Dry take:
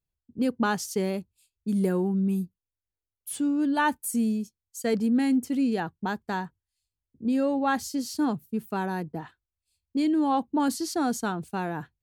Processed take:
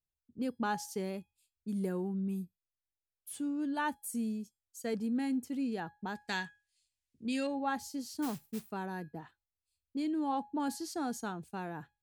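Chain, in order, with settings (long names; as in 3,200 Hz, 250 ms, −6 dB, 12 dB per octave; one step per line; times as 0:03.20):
0:06.15–0:07.47: flat-topped bell 4,300 Hz +15 dB 2.8 octaves
0:08.22–0:08.72: noise that follows the level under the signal 13 dB
tuned comb filter 830 Hz, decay 0.32 s, mix 60%
level −2 dB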